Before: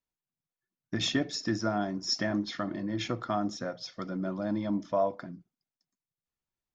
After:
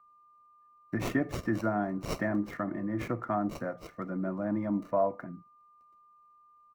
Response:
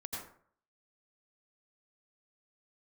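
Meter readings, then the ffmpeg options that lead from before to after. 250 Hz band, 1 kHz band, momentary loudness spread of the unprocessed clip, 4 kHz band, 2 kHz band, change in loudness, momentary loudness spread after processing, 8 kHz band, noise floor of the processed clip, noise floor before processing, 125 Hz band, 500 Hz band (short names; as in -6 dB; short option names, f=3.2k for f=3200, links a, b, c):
0.0 dB, 0.0 dB, 9 LU, -16.5 dB, -0.5 dB, -1.0 dB, 9 LU, n/a, -61 dBFS, under -85 dBFS, +0.5 dB, +0.5 dB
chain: -filter_complex "[0:a]firequalizer=gain_entry='entry(2100,0);entry(4100,-27);entry(6300,10)':delay=0.05:min_phase=1,aeval=exprs='val(0)+0.00126*sin(2*PI*1200*n/s)':c=same,acrossover=split=260|880|3600[a][b][c][d];[d]acrusher=samples=26:mix=1:aa=0.000001[e];[a][b][c][e]amix=inputs=4:normalize=0"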